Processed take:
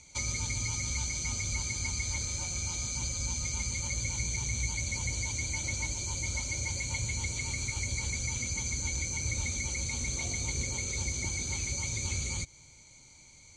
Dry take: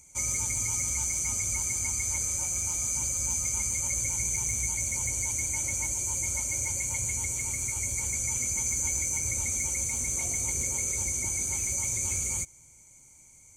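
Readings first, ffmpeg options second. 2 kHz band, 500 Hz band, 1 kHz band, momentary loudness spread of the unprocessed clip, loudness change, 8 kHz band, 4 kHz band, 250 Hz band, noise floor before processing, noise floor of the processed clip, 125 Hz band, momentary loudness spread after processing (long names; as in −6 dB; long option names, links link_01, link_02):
+1.0 dB, −1.0 dB, −1.0 dB, 2 LU, −5.0 dB, −7.0 dB, +9.0 dB, +2.0 dB, −55 dBFS, −56 dBFS, +3.5 dB, 1 LU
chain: -filter_complex "[0:a]acrossover=split=280[link_01][link_02];[link_02]acompressor=threshold=-34dB:ratio=3[link_03];[link_01][link_03]amix=inputs=2:normalize=0,lowpass=frequency=4100:width_type=q:width=6.3,volume=3.5dB"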